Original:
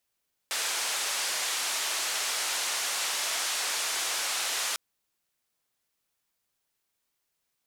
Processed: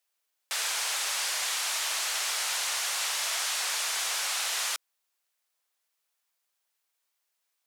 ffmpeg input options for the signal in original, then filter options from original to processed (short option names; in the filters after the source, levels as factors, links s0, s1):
-f lavfi -i "anoisesrc=c=white:d=4.25:r=44100:seed=1,highpass=f=640,lowpass=f=8300,volume=-21.2dB"
-af "highpass=570"